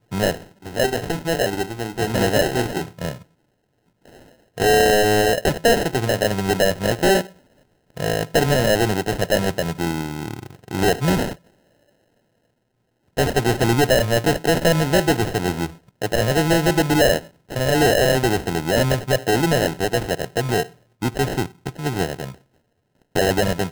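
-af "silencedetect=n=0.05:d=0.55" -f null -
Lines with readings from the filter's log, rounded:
silence_start: 3.13
silence_end: 4.58 | silence_duration: 1.45
silence_start: 7.21
silence_end: 7.97 | silence_duration: 0.76
silence_start: 11.33
silence_end: 13.18 | silence_duration: 1.85
silence_start: 22.30
silence_end: 23.15 | silence_duration: 0.85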